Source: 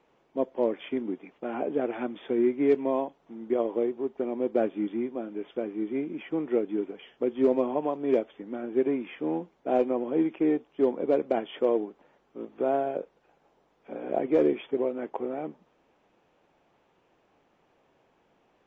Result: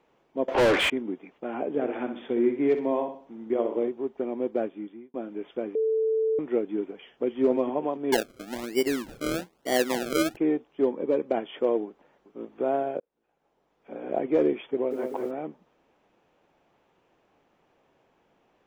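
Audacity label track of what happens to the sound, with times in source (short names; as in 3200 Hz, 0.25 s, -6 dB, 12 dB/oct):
0.480000	0.900000	overdrive pedal drive 39 dB, tone 2800 Hz, clips at -13.5 dBFS
1.680000	3.880000	feedback echo 63 ms, feedback 39%, level -8.5 dB
4.400000	5.140000	fade out
5.750000	6.390000	bleep 442 Hz -21.5 dBFS
6.920000	7.410000	echo throw 0.28 s, feedback 35%, level -7.5 dB
8.120000	10.370000	decimation with a swept rate 33× 1.1 Hz
10.870000	11.290000	notch comb 700 Hz
11.860000	12.470000	echo throw 0.39 s, feedback 15%, level -12.5 dB
13.000000	14.060000	fade in
14.710000	15.310000	lo-fi delay 0.191 s, feedback 55%, word length 9-bit, level -5 dB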